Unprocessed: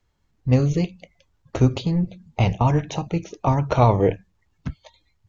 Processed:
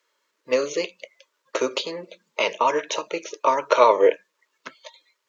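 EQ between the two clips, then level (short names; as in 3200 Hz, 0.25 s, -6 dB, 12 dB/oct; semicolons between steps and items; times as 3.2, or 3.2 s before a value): HPF 460 Hz 24 dB/oct; Butterworth band-stop 760 Hz, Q 2.9; +7.0 dB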